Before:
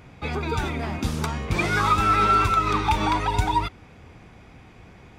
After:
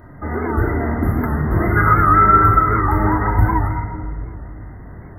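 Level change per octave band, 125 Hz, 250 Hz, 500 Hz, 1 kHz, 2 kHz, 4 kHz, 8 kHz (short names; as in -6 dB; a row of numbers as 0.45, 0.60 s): +10.0 dB, +8.5 dB, +7.0 dB, +6.0 dB, +5.0 dB, under -40 dB, under -10 dB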